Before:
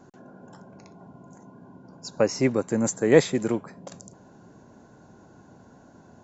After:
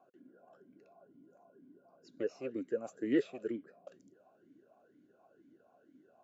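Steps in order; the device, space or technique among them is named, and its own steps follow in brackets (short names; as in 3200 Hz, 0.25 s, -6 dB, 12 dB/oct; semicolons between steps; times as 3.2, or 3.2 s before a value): talk box (tube stage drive 10 dB, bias 0.55; vowel sweep a-i 2.1 Hz)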